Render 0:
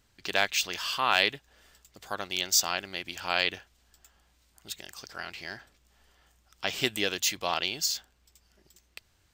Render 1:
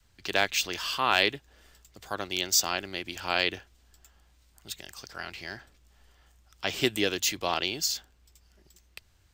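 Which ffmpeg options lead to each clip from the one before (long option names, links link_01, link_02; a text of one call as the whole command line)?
ffmpeg -i in.wav -filter_complex "[0:a]adynamicequalizer=threshold=0.00398:dfrequency=330:dqfactor=1.4:tfrequency=330:tqfactor=1.4:attack=5:release=100:ratio=0.375:range=3:mode=boostabove:tftype=bell,acrossover=split=110|1800|4900[link_01][link_02][link_03][link_04];[link_01]acontrast=63[link_05];[link_05][link_02][link_03][link_04]amix=inputs=4:normalize=0" out.wav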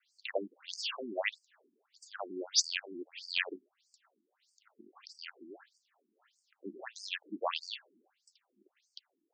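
ffmpeg -i in.wav -af "afftfilt=real='re*between(b*sr/1024,260*pow(6500/260,0.5+0.5*sin(2*PI*1.6*pts/sr))/1.41,260*pow(6500/260,0.5+0.5*sin(2*PI*1.6*pts/sr))*1.41)':imag='im*between(b*sr/1024,260*pow(6500/260,0.5+0.5*sin(2*PI*1.6*pts/sr))/1.41,260*pow(6500/260,0.5+0.5*sin(2*PI*1.6*pts/sr))*1.41)':win_size=1024:overlap=0.75" out.wav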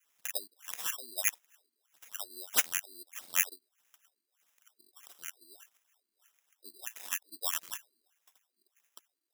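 ffmpeg -i in.wav -af "acrusher=samples=10:mix=1:aa=0.000001,aderivative,acontrast=44,volume=3.5dB" out.wav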